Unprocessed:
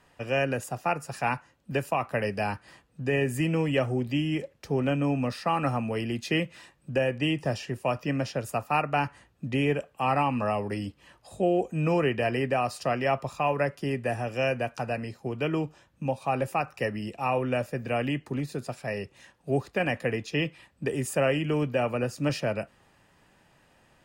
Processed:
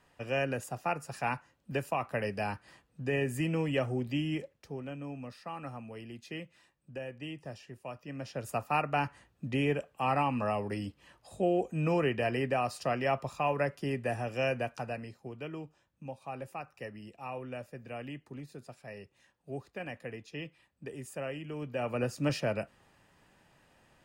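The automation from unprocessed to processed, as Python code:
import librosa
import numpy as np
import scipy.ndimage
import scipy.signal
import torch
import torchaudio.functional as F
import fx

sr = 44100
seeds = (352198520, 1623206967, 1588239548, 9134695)

y = fx.gain(x, sr, db=fx.line((4.34, -5.0), (4.83, -15.0), (8.07, -15.0), (8.51, -4.0), (14.61, -4.0), (15.55, -13.5), (21.55, -13.5), (22.01, -3.0)))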